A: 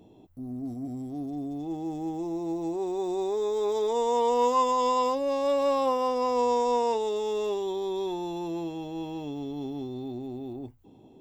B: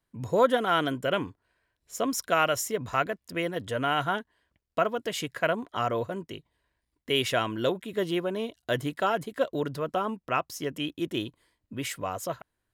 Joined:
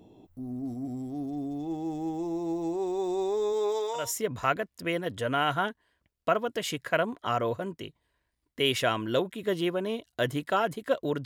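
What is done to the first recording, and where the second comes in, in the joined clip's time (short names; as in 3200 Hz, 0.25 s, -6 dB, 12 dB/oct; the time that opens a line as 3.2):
A
3.52–4.13 HPF 160 Hz -> 1400 Hz
4.03 switch to B from 2.53 s, crossfade 0.20 s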